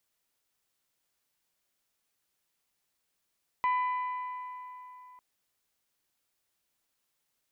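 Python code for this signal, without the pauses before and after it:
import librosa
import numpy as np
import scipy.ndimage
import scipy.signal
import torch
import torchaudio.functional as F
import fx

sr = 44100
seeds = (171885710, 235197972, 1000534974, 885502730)

y = fx.strike_metal(sr, length_s=1.55, level_db=-24, body='bell', hz=1000.0, decay_s=3.44, tilt_db=10, modes=5)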